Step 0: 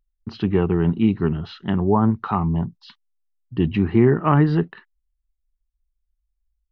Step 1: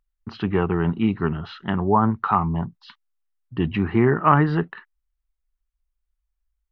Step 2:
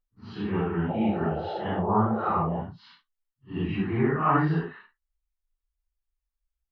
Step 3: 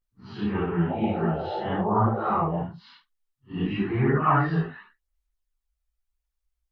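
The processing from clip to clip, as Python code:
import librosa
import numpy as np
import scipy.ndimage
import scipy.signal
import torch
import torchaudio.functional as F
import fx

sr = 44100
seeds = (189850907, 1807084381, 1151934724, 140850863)

y1 = fx.curve_eq(x, sr, hz=(360.0, 1300.0, 4700.0), db=(0, 9, 0))
y1 = F.gain(torch.from_numpy(y1), -3.0).numpy()
y2 = fx.phase_scramble(y1, sr, seeds[0], window_ms=200)
y2 = fx.spec_paint(y2, sr, seeds[1], shape='noise', start_s=0.88, length_s=1.74, low_hz=320.0, high_hz=890.0, level_db=-27.0)
y2 = F.gain(torch.from_numpy(y2), -6.0).numpy()
y3 = fx.chorus_voices(y2, sr, voices=2, hz=0.48, base_ms=19, depth_ms=4.6, mix_pct=60)
y3 = F.gain(torch.from_numpy(y3), 4.5).numpy()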